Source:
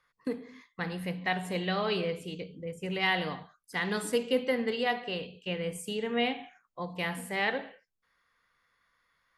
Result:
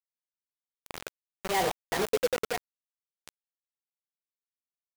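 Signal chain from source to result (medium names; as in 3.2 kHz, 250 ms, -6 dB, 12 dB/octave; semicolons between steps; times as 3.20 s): Doppler pass-by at 3.40 s, 13 m/s, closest 3.6 m; granular stretch 0.53×, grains 23 ms; high-order bell 570 Hz +12.5 dB; bit crusher 5-bit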